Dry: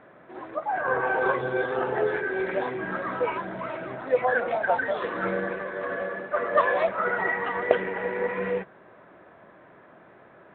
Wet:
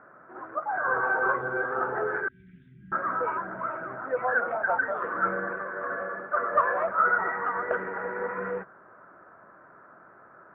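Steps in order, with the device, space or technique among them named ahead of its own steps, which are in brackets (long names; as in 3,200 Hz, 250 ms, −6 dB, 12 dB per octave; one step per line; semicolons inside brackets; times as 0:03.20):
0:02.28–0:02.92: elliptic band-stop filter 180–3,400 Hz, stop band 60 dB
overdriven synthesiser ladder filter (soft clipping −14 dBFS, distortion −17 dB; transistor ladder low-pass 1,500 Hz, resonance 70%)
level +6 dB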